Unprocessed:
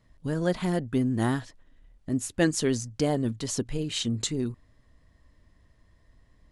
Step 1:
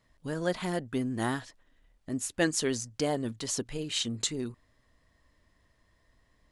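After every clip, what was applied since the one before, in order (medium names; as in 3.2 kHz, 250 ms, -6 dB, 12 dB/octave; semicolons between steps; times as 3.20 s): bass shelf 320 Hz -9.5 dB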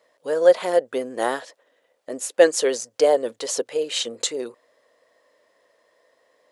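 resonant high-pass 510 Hz, resonance Q 4.9; trim +5.5 dB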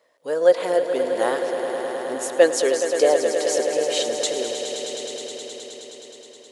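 echo with a slow build-up 105 ms, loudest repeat 5, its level -11 dB; trim -1 dB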